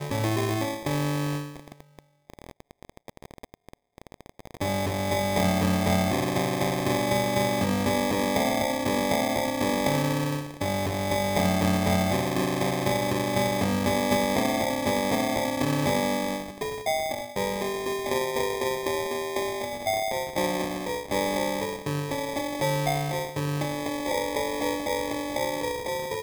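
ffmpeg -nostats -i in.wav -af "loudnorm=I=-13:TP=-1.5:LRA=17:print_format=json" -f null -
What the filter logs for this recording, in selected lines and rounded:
"input_i" : "-26.8",
"input_tp" : "-10.8",
"input_lra" : "3.9",
"input_thresh" : "-37.2",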